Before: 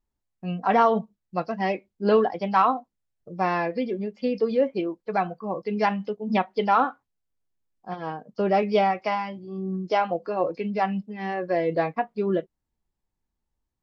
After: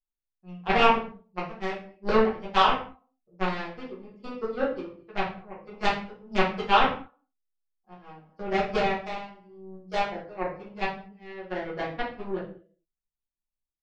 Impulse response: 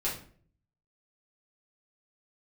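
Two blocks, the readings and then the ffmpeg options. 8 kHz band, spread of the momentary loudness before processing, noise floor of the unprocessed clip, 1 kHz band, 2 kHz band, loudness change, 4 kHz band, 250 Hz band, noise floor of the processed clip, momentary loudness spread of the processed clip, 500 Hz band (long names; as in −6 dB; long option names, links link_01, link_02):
can't be measured, 11 LU, −82 dBFS, −3.0 dB, +2.0 dB, −2.5 dB, +7.0 dB, −6.0 dB, below −85 dBFS, 20 LU, −5.0 dB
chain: -filter_complex "[0:a]asplit=2[link_01][link_02];[link_02]adelay=215.7,volume=-16dB,highshelf=frequency=4000:gain=-4.85[link_03];[link_01][link_03]amix=inputs=2:normalize=0,aeval=exprs='0.398*(cos(1*acos(clip(val(0)/0.398,-1,1)))-cos(1*PI/2))+0.126*(cos(3*acos(clip(val(0)/0.398,-1,1)))-cos(3*PI/2))':channel_layout=same[link_04];[1:a]atrim=start_sample=2205,afade=type=out:start_time=0.29:duration=0.01,atrim=end_sample=13230[link_05];[link_04][link_05]afir=irnorm=-1:irlink=0"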